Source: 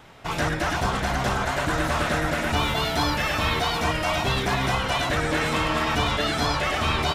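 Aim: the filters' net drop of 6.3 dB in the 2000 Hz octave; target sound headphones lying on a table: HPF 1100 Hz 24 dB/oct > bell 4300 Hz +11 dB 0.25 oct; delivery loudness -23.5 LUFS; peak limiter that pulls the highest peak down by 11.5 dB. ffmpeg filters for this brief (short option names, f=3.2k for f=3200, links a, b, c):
-af "equalizer=f=2k:t=o:g=-8.5,alimiter=limit=-23dB:level=0:latency=1,highpass=f=1.1k:w=0.5412,highpass=f=1.1k:w=1.3066,equalizer=f=4.3k:t=o:w=0.25:g=11,volume=10dB"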